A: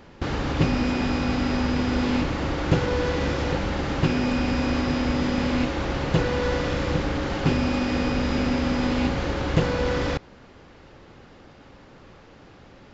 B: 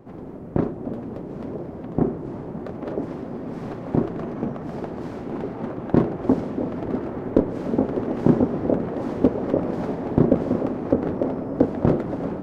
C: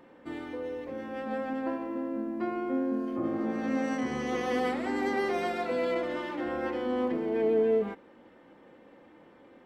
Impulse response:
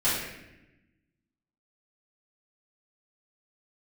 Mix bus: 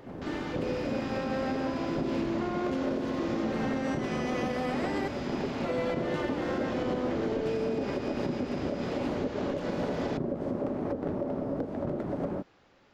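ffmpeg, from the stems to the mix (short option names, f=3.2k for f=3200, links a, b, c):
-filter_complex "[0:a]lowshelf=f=240:g=-10.5,asoftclip=type=hard:threshold=-22dB,volume=-10.5dB[a];[1:a]equalizer=f=570:w=7.5:g=8,bandreject=f=520:w=12,alimiter=limit=-11.5dB:level=0:latency=1:release=293,volume=-3.5dB[b];[2:a]alimiter=level_in=0.5dB:limit=-24dB:level=0:latency=1:release=222,volume=-0.5dB,volume=2.5dB,asplit=3[c][d][e];[c]atrim=end=5.08,asetpts=PTS-STARTPTS,afade=t=out:st=5.076:d=0.004:c=hsin[f];[d]atrim=start=5.08:end=5.64,asetpts=PTS-STARTPTS,volume=0[g];[e]atrim=start=5.64,asetpts=PTS-STARTPTS,afade=t=in:d=0.004:c=hsin[h];[f][g][h]concat=n=3:v=0:a=1[i];[a][b][i]amix=inputs=3:normalize=0,alimiter=limit=-21.5dB:level=0:latency=1:release=111"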